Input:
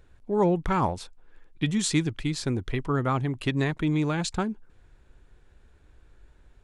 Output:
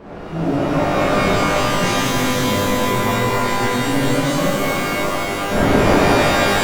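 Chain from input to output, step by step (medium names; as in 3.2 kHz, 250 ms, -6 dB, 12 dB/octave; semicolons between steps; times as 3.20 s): pitch bend over the whole clip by -4.5 st ending unshifted; wind noise 610 Hz -28 dBFS; pitch-shifted reverb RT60 3.6 s, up +12 st, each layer -2 dB, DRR -8.5 dB; trim -4.5 dB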